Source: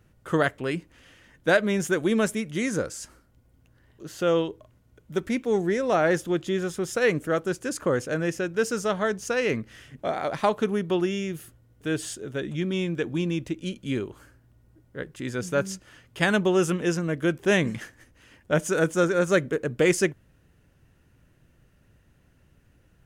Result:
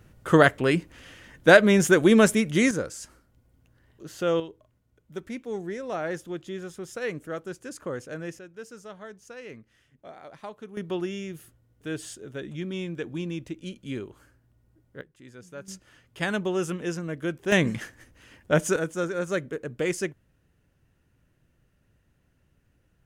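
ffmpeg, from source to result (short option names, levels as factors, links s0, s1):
-af "asetnsamples=n=441:p=0,asendcmd='2.71 volume volume -2dB;4.4 volume volume -9dB;8.39 volume volume -17dB;10.77 volume volume -5.5dB;15.01 volume volume -16.5dB;15.68 volume volume -5.5dB;17.52 volume volume 1.5dB;18.76 volume volume -6.5dB',volume=2"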